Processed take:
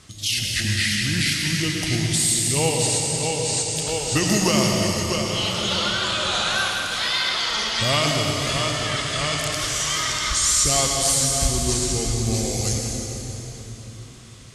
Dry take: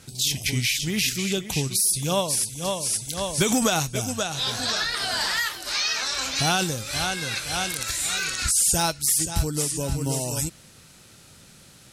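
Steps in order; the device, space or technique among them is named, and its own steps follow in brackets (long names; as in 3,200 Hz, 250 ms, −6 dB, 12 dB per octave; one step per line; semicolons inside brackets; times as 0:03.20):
slowed and reverbed (speed change −18%; convolution reverb RT60 3.4 s, pre-delay 89 ms, DRR 0 dB)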